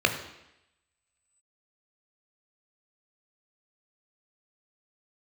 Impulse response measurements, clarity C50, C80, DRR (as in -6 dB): 9.5 dB, 11.5 dB, 5.0 dB